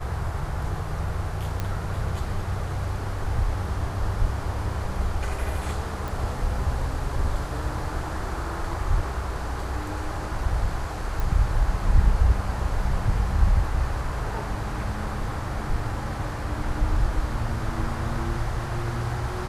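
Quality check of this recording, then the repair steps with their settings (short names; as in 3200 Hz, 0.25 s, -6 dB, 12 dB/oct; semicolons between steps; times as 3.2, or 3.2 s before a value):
1.6 pop -14 dBFS
6.08 pop
11.2 pop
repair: de-click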